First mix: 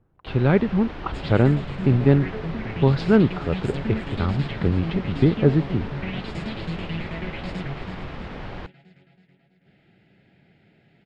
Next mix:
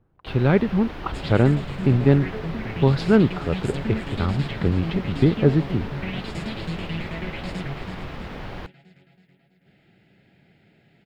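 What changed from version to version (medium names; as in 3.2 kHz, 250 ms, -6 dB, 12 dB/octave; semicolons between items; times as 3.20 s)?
master: remove distance through air 69 m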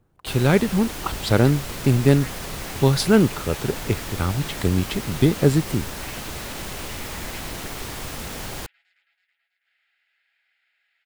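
speech: remove distance through air 320 m; first sound: remove distance through air 350 m; second sound: add ladder high-pass 1.2 kHz, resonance 30%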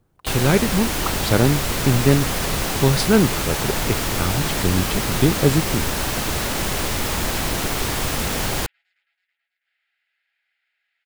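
first sound +9.5 dB; second sound -4.0 dB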